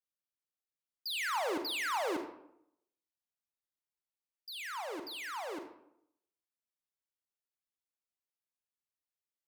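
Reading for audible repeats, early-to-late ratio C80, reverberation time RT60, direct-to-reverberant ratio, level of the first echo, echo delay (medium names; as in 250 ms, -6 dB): no echo, 10.5 dB, 0.75 s, 5.5 dB, no echo, no echo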